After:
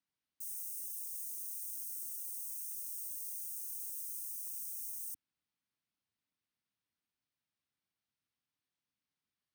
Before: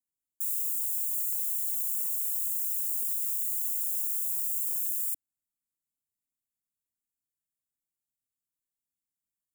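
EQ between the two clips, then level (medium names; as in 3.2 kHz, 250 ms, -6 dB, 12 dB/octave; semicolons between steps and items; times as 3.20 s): Savitzky-Golay filter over 15 samples; high-pass 76 Hz; peaking EQ 550 Hz -4 dB 1.2 oct; +6.5 dB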